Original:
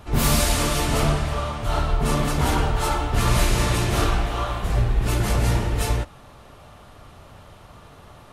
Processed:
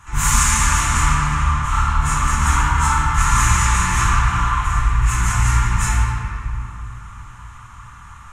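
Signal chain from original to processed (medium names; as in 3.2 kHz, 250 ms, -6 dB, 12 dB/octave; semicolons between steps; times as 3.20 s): FFT filter 110 Hz 0 dB, 450 Hz -20 dB, 630 Hz -22 dB, 980 Hz +7 dB, 1.8 kHz +7 dB, 4.7 kHz -7 dB, 6.8 kHz +14 dB, 12 kHz -4 dB; simulated room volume 120 m³, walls hard, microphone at 0.69 m; trim -3 dB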